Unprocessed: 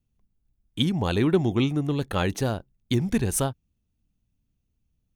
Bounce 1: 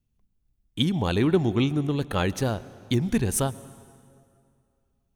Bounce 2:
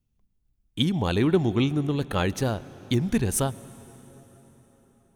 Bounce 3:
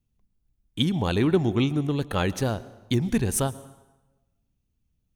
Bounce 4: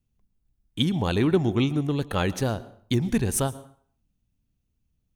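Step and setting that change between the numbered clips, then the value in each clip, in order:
plate-style reverb, RT60: 2.4 s, 4.9 s, 1.1 s, 0.54 s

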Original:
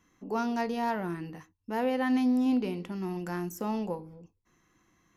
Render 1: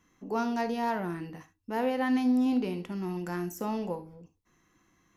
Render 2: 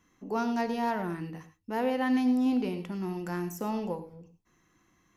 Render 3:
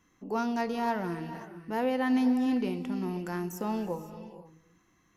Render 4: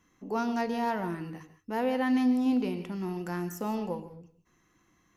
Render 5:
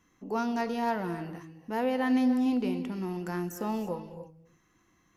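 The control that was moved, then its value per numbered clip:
gated-style reverb, gate: 90 ms, 130 ms, 540 ms, 190 ms, 330 ms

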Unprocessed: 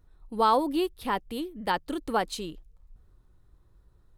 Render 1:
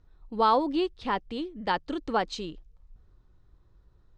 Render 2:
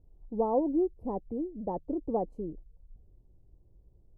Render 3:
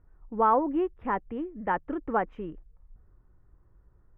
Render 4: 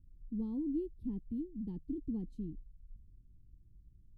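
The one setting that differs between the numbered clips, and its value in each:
inverse Chebyshev low-pass, stop band from: 11 kHz, 1.4 kHz, 3.9 kHz, 550 Hz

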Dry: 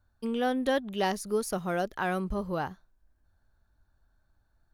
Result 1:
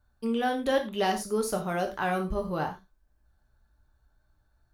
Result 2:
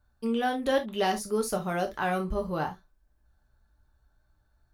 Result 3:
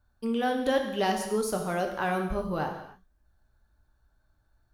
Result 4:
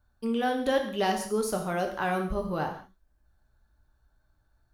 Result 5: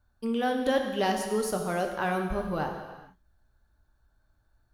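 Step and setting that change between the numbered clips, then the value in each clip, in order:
gated-style reverb, gate: 130 ms, 90 ms, 320 ms, 220 ms, 480 ms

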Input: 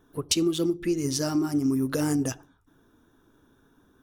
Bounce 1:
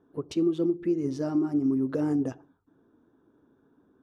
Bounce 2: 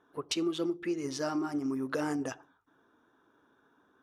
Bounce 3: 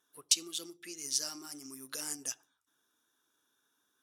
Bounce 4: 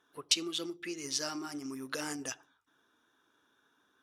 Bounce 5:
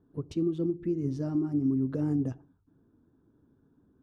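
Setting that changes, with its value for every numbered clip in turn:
band-pass filter, frequency: 360 Hz, 1.1 kHz, 7.8 kHz, 2.9 kHz, 140 Hz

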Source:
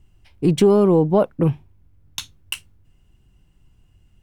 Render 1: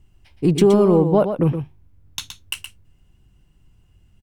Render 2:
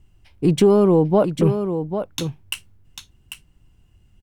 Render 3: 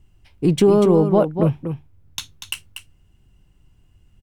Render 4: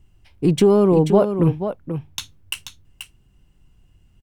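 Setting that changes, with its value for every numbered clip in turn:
delay, time: 120 ms, 795 ms, 240 ms, 484 ms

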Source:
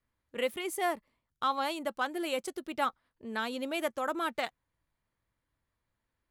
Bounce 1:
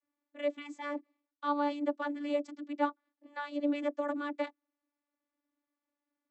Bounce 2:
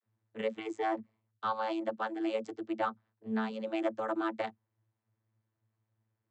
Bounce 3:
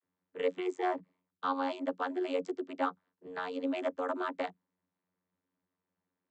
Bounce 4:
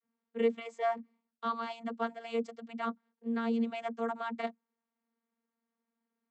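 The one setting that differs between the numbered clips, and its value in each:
vocoder, frequency: 290 Hz, 110 Hz, 91 Hz, 230 Hz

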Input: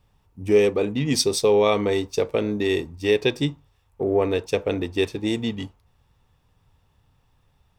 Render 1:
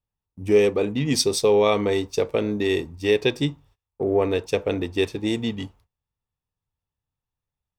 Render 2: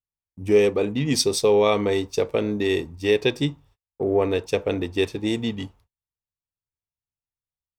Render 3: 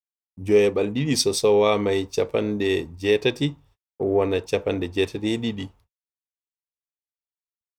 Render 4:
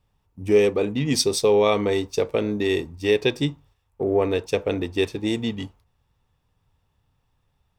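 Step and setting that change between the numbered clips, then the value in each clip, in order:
gate, range: -25 dB, -38 dB, -59 dB, -6 dB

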